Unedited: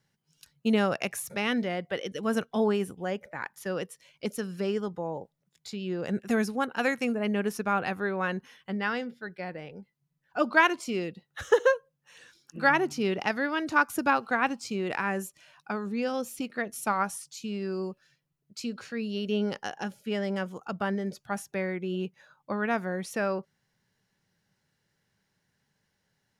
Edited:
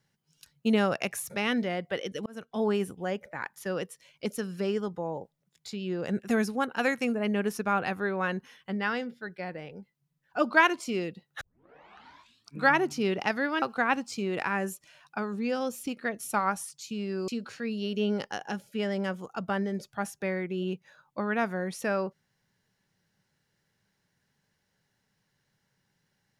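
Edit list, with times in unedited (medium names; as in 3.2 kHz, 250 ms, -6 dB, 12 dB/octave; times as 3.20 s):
2.26–2.76 s: fade in
11.41 s: tape start 1.28 s
13.62–14.15 s: delete
17.81–18.60 s: delete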